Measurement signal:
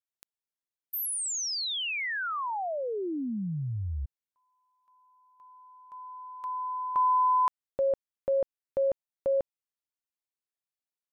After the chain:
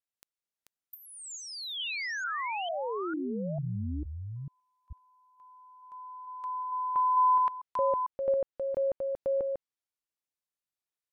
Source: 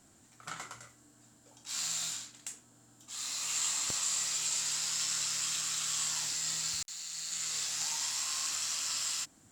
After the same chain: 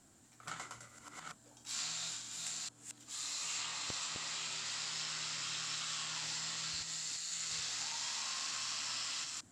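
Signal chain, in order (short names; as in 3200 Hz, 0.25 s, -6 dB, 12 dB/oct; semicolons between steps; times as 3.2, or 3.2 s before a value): reverse delay 0.448 s, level -4 dB; treble ducked by the level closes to 2800 Hz, closed at -26 dBFS; gain -2.5 dB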